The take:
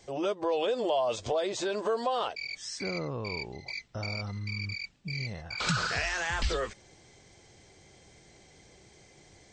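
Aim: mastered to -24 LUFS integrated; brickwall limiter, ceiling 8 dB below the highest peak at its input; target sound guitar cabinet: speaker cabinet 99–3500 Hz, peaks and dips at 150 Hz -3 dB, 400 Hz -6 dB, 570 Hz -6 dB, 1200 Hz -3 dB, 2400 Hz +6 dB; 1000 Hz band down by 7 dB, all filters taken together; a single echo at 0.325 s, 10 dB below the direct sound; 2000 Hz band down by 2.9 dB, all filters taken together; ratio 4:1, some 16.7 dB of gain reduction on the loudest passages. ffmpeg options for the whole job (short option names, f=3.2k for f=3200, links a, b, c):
-af "equalizer=f=1k:t=o:g=-6.5,equalizer=f=2k:t=o:g=-5.5,acompressor=threshold=-46dB:ratio=4,alimiter=level_in=15.5dB:limit=-24dB:level=0:latency=1,volume=-15.5dB,highpass=99,equalizer=f=150:t=q:w=4:g=-3,equalizer=f=400:t=q:w=4:g=-6,equalizer=f=570:t=q:w=4:g=-6,equalizer=f=1.2k:t=q:w=4:g=-3,equalizer=f=2.4k:t=q:w=4:g=6,lowpass=f=3.5k:w=0.5412,lowpass=f=3.5k:w=1.3066,aecho=1:1:325:0.316,volume=26dB"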